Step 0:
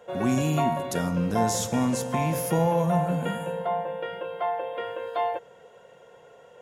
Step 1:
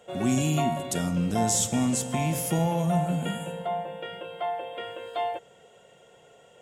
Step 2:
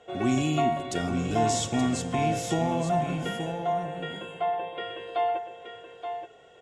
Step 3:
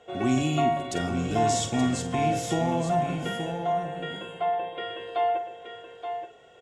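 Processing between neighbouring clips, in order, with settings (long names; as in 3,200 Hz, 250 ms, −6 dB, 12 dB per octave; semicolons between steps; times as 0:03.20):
thirty-one-band graphic EQ 500 Hz −7 dB, 1,000 Hz −9 dB, 1,600 Hz −6 dB, 3,150 Hz +5 dB, 8,000 Hz +11 dB
low-pass filter 5,100 Hz 12 dB per octave; comb filter 2.7 ms, depth 49%; single-tap delay 876 ms −8 dB
double-tracking delay 47 ms −11.5 dB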